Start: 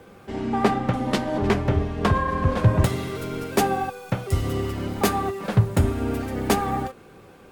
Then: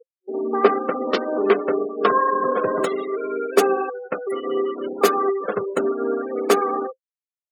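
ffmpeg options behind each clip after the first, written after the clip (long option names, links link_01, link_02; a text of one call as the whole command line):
ffmpeg -i in.wav -af "highpass=frequency=280:width=0.5412,highpass=frequency=280:width=1.3066,afftfilt=real='re*gte(hypot(re,im),0.0398)':imag='im*gte(hypot(re,im),0.0398)':win_size=1024:overlap=0.75,superequalizer=7b=2:9b=0.562:10b=1.78,volume=2.5dB" out.wav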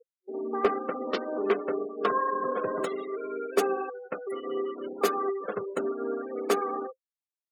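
ffmpeg -i in.wav -af "asoftclip=type=hard:threshold=-5dB,volume=-8.5dB" out.wav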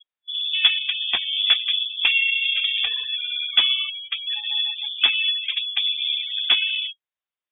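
ffmpeg -i in.wav -af "lowpass=frequency=3200:width_type=q:width=0.5098,lowpass=frequency=3200:width_type=q:width=0.6013,lowpass=frequency=3200:width_type=q:width=0.9,lowpass=frequency=3200:width_type=q:width=2.563,afreqshift=-3800,volume=7dB" out.wav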